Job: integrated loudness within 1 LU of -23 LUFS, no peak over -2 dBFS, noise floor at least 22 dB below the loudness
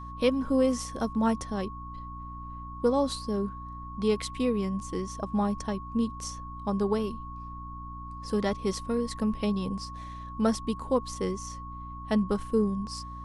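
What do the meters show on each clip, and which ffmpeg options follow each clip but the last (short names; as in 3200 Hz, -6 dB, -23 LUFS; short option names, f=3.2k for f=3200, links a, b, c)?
hum 60 Hz; harmonics up to 300 Hz; hum level -40 dBFS; steady tone 1100 Hz; tone level -41 dBFS; loudness -30.0 LUFS; peak -12.0 dBFS; loudness target -23.0 LUFS
-> -af "bandreject=f=60:t=h:w=4,bandreject=f=120:t=h:w=4,bandreject=f=180:t=h:w=4,bandreject=f=240:t=h:w=4,bandreject=f=300:t=h:w=4"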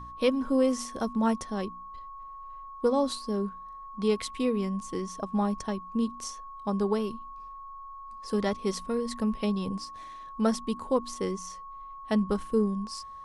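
hum none; steady tone 1100 Hz; tone level -41 dBFS
-> -af "bandreject=f=1.1k:w=30"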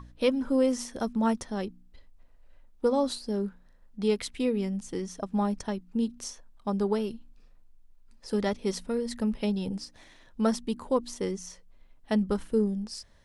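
steady tone none; loudness -30.0 LUFS; peak -12.5 dBFS; loudness target -23.0 LUFS
-> -af "volume=7dB"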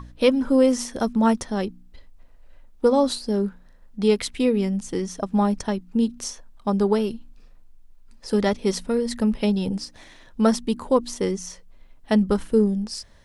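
loudness -23.0 LUFS; peak -5.5 dBFS; noise floor -50 dBFS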